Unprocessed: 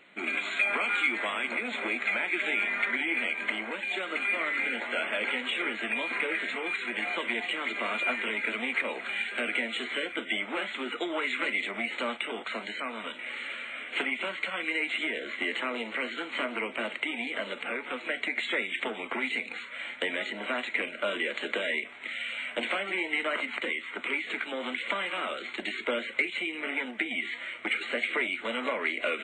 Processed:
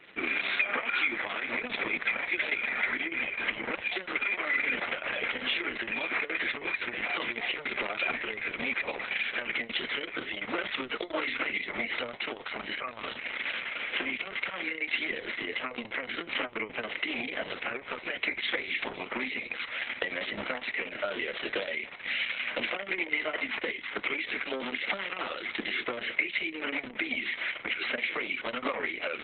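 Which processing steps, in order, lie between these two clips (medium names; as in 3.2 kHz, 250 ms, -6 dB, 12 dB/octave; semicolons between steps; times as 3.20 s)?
peaking EQ 5.6 kHz +3 dB 0.32 oct; compression 3:1, threshold -32 dBFS, peak gain reduction 8 dB; trim +4.5 dB; Opus 6 kbps 48 kHz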